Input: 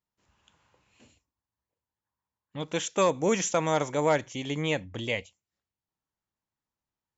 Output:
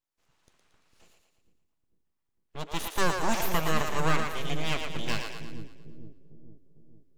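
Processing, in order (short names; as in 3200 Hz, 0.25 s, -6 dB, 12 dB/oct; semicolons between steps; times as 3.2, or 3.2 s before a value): full-wave rectifier; split-band echo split 380 Hz, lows 0.452 s, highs 0.114 s, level -5.5 dB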